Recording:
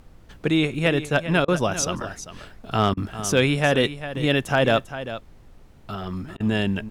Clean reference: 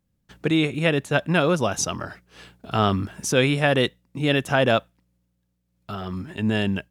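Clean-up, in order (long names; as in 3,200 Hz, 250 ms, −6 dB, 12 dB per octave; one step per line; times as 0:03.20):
clipped peaks rebuilt −8.5 dBFS
repair the gap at 0:01.45/0:02.94/0:06.37, 30 ms
noise reduction from a noise print 24 dB
echo removal 397 ms −12.5 dB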